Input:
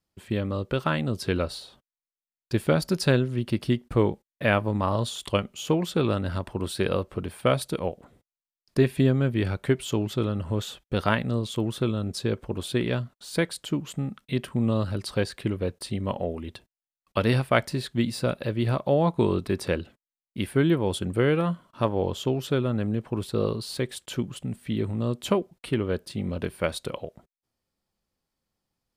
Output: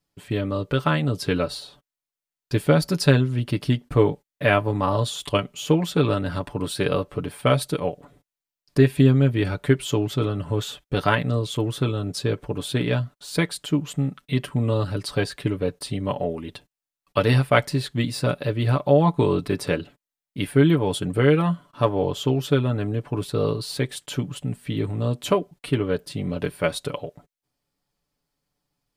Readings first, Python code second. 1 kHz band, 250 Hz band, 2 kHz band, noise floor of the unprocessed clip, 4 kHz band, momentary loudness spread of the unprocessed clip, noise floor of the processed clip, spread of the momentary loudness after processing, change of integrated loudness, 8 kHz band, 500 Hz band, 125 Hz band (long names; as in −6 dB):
+4.0 dB, +3.0 dB, +3.5 dB, below −85 dBFS, +3.5 dB, 9 LU, below −85 dBFS, 10 LU, +3.5 dB, +3.5 dB, +3.5 dB, +5.0 dB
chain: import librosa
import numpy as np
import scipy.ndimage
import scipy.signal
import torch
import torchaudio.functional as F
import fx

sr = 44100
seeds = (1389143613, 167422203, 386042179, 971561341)

y = x + 0.65 * np.pad(x, (int(6.9 * sr / 1000.0), 0))[:len(x)]
y = y * librosa.db_to_amplitude(2.0)